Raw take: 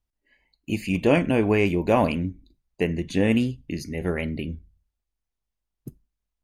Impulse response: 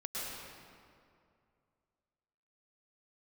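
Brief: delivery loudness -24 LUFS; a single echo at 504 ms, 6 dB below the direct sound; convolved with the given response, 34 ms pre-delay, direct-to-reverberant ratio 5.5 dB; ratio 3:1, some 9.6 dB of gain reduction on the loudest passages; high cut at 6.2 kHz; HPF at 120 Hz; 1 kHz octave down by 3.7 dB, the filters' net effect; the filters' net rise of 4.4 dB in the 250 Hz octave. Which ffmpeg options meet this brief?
-filter_complex "[0:a]highpass=120,lowpass=6200,equalizer=f=250:t=o:g=6,equalizer=f=1000:t=o:g=-5.5,acompressor=threshold=0.0501:ratio=3,aecho=1:1:504:0.501,asplit=2[s0][s1];[1:a]atrim=start_sample=2205,adelay=34[s2];[s1][s2]afir=irnorm=-1:irlink=0,volume=0.398[s3];[s0][s3]amix=inputs=2:normalize=0,volume=1.68"

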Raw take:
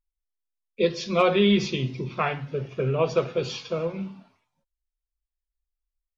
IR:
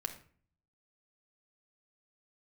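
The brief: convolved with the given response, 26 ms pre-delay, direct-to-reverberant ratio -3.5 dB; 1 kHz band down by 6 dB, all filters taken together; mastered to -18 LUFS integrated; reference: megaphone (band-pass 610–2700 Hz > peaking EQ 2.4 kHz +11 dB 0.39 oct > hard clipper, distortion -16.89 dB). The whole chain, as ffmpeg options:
-filter_complex "[0:a]equalizer=f=1000:t=o:g=-7.5,asplit=2[s0][s1];[1:a]atrim=start_sample=2205,adelay=26[s2];[s1][s2]afir=irnorm=-1:irlink=0,volume=1.5[s3];[s0][s3]amix=inputs=2:normalize=0,highpass=610,lowpass=2700,equalizer=f=2400:t=o:w=0.39:g=11,asoftclip=type=hard:threshold=0.158,volume=2.24"

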